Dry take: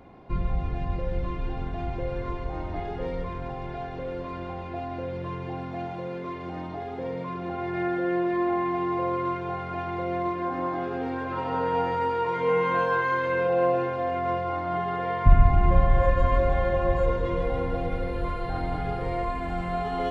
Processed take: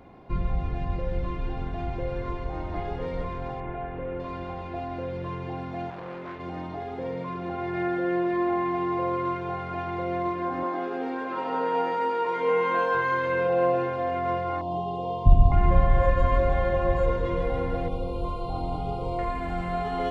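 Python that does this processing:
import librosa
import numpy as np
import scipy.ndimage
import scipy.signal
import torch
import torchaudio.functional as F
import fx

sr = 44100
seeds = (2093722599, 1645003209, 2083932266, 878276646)

y = fx.echo_throw(x, sr, start_s=2.25, length_s=0.53, ms=460, feedback_pct=70, wet_db=-8.5)
y = fx.lowpass(y, sr, hz=2700.0, slope=24, at=(3.6, 4.2))
y = fx.transformer_sat(y, sr, knee_hz=1000.0, at=(5.9, 6.4))
y = fx.highpass(y, sr, hz=210.0, slope=24, at=(10.63, 12.95))
y = fx.cheby1_bandstop(y, sr, low_hz=960.0, high_hz=2900.0, order=3, at=(14.61, 15.52))
y = fx.cheby1_bandstop(y, sr, low_hz=1100.0, high_hz=2800.0, order=2, at=(17.88, 19.19))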